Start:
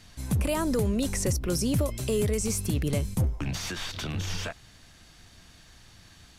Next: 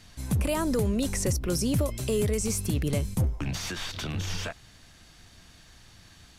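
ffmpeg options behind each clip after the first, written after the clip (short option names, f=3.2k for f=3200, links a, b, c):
-af anull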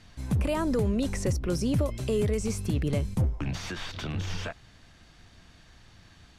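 -af "aemphasis=mode=reproduction:type=50kf"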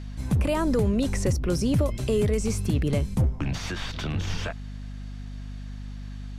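-af "aeval=exprs='val(0)+0.0126*(sin(2*PI*50*n/s)+sin(2*PI*2*50*n/s)/2+sin(2*PI*3*50*n/s)/3+sin(2*PI*4*50*n/s)/4+sin(2*PI*5*50*n/s)/5)':c=same,volume=3dB"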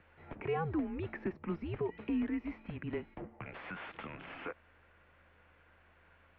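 -af "highpass=f=350:t=q:w=0.5412,highpass=f=350:t=q:w=1.307,lowpass=f=2.7k:t=q:w=0.5176,lowpass=f=2.7k:t=q:w=0.7071,lowpass=f=2.7k:t=q:w=1.932,afreqshift=-170,volume=-7dB"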